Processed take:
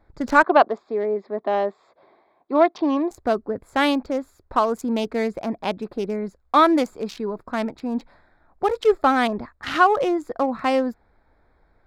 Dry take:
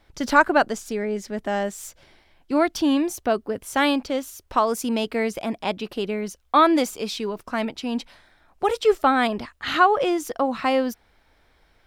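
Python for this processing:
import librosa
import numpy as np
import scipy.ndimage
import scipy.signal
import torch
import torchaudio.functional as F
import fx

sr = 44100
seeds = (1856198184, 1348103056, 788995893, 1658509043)

y = fx.wiener(x, sr, points=15)
y = fx.cabinet(y, sr, low_hz=300.0, low_slope=12, high_hz=4300.0, hz=(400.0, 690.0, 1100.0, 1500.0, 3600.0), db=(5, 6, 9, -6, 3), at=(0.43, 3.11))
y = y * 10.0 ** (1.0 / 20.0)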